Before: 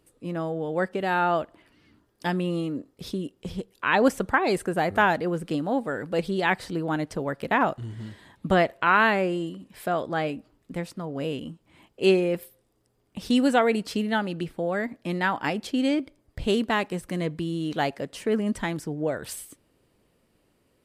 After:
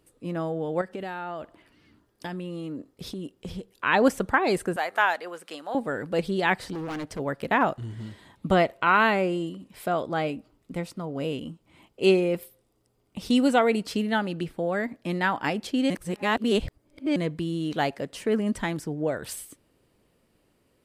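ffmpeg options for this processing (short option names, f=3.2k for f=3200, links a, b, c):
-filter_complex "[0:a]asettb=1/sr,asplit=3[a][b][c];[a]atrim=end=0.814[d];[b]atrim=start=0.81:end=3.71,asetpts=PTS-STARTPTS,afade=t=in:d=0.004:c=qsin,afade=t=out:st=2.896:d=0.004:c=qsin,acompressor=threshold=-30dB:ratio=10:attack=3.2:release=140:knee=1:detection=peak[e];[c]atrim=start=3.706[f];[d][e]acrossfade=d=0.004:c1=hsin:c2=qsin[g];[g][f]acrossfade=d=0.004:c1=qsin:c2=hsin,asettb=1/sr,asplit=3[h][i][j];[h]atrim=end=4.764[k];[i]atrim=start=4.76:end=5.75,asetpts=PTS-STARTPTS,afade=t=in:d=0.004:c=qsin,afade=t=out:st=0.986:d=0.004:c=qsin,highpass=760[l];[j]atrim=start=5.746[m];[k][l]acrossfade=d=0.004:c1=hsin:c2=qsin[n];[n][m]acrossfade=d=0.004:c1=qsin:c2=hsin,asplit=3[o][p][q];[o]afade=t=out:st=6.72:d=0.02[r];[p]volume=30.5dB,asoftclip=hard,volume=-30.5dB,afade=t=in:st=6.72:d=0.02,afade=t=out:st=7.18:d=0.02[s];[q]afade=t=in:st=7.18:d=0.02[t];[r][s][t]amix=inputs=3:normalize=0,asettb=1/sr,asplit=3[u][v][w];[u]atrim=end=8.004[x];[v]atrim=start=8:end=13.86,asetpts=PTS-STARTPTS,afade=t=in:d=0.004:c=qsin,afade=t=out:st=5.856:d=0.004:c=qsin,bandreject=f=1.7k:w=9.3[y];[w]atrim=start=13.856[z];[x][y]acrossfade=d=0.004:c1=hsin:c2=qsin[aa];[aa][z]acrossfade=d=0.004:c1=qsin:c2=hsin,asplit=3[ab][ac][ad];[ab]atrim=end=15.902[ae];[ac]atrim=start=15.898:end=17.162,asetpts=PTS-STARTPTS,areverse[af];[ad]atrim=start=17.158[ag];[ae][af]acrossfade=d=0.004:c1=hsin:c2=hsin[ah];[ah][ag]acrossfade=d=0.004:c1=hsin:c2=hsin"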